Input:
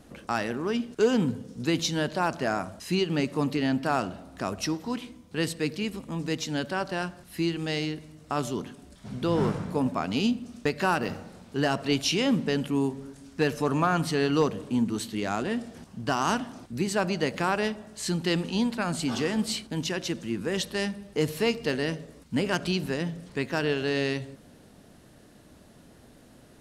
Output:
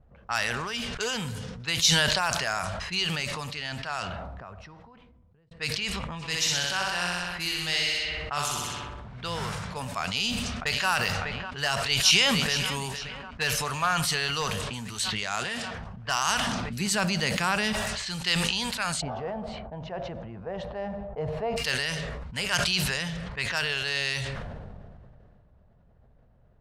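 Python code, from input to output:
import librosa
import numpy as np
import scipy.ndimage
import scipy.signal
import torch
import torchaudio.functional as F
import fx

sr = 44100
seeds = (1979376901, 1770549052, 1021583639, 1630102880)

y = fx.room_flutter(x, sr, wall_m=10.7, rt60_s=1.3, at=(6.21, 9.15), fade=0.02)
y = fx.echo_throw(y, sr, start_s=10.01, length_s=0.89, ms=600, feedback_pct=80, wet_db=-12.5)
y = fx.echo_throw(y, sr, start_s=11.87, length_s=0.88, ms=460, feedback_pct=45, wet_db=-12.0)
y = fx.highpass(y, sr, hz=110.0, slope=12, at=(15.23, 15.74))
y = fx.peak_eq(y, sr, hz=230.0, db=12.0, octaves=1.5, at=(16.47, 17.73))
y = fx.lowpass_res(y, sr, hz=680.0, q=3.8, at=(19.0, 21.56), fade=0.02)
y = fx.edit(y, sr, fx.fade_out_span(start_s=2.76, length_s=2.75), tone=tone)
y = fx.env_lowpass(y, sr, base_hz=460.0, full_db=-24.0)
y = fx.tone_stack(y, sr, knobs='10-0-10')
y = fx.sustainer(y, sr, db_per_s=22.0)
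y = y * 10.0 ** (8.0 / 20.0)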